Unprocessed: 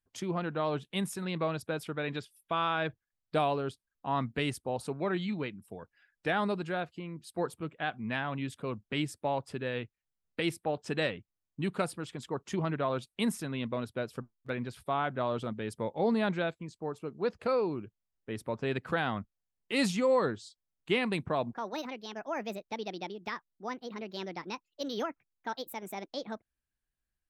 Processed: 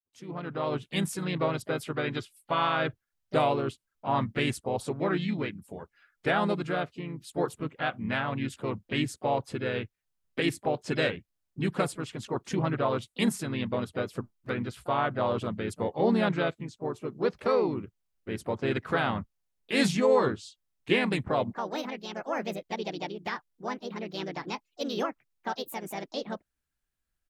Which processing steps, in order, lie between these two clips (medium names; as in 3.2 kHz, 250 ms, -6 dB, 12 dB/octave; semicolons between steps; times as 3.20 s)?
fade-in on the opening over 0.91 s; harmony voices -3 st -5 dB, +4 st -17 dB; trim +2.5 dB